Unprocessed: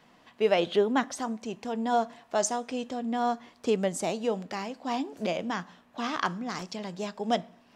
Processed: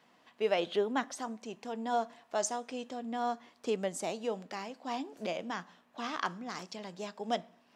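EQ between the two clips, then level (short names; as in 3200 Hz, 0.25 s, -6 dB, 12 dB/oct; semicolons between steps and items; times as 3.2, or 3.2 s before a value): HPF 240 Hz 6 dB/oct; -5.0 dB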